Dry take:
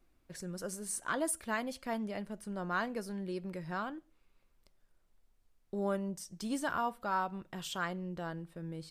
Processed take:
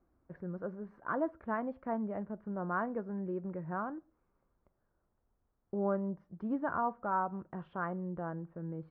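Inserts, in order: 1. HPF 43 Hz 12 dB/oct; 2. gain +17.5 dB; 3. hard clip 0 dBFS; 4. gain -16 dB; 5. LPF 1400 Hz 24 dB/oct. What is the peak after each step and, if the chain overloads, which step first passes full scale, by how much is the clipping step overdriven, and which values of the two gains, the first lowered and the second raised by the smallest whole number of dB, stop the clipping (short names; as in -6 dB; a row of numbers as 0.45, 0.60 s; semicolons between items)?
-22.0, -4.5, -4.5, -20.5, -21.5 dBFS; no overload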